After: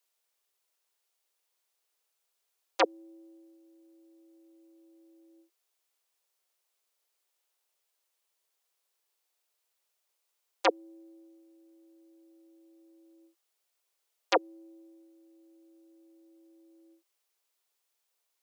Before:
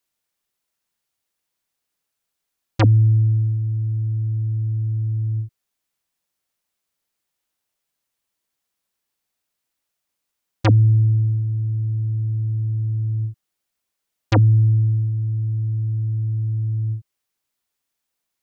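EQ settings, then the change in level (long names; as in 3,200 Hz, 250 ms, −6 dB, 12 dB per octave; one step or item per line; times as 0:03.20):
Butterworth high-pass 360 Hz 72 dB per octave
parametric band 1,700 Hz −3 dB
0.0 dB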